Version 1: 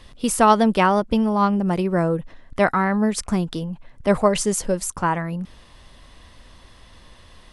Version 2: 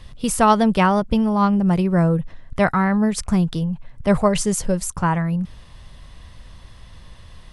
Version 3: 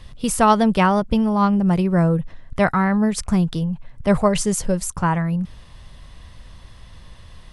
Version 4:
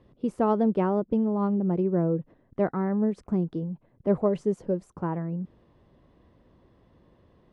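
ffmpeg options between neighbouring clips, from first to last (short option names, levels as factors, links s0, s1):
-af "lowshelf=f=200:t=q:w=1.5:g=6.5"
-af anull
-af "bandpass=f=350:t=q:w=1.9:csg=0"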